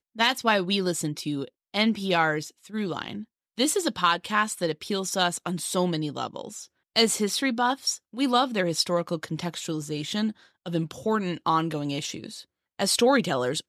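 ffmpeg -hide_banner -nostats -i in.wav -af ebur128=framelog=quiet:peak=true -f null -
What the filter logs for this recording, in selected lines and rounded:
Integrated loudness:
  I:         -26.1 LUFS
  Threshold: -36.4 LUFS
Loudness range:
  LRA:         3.1 LU
  Threshold: -46.8 LUFS
  LRA low:   -28.6 LUFS
  LRA high:  -25.6 LUFS
True peak:
  Peak:       -7.9 dBFS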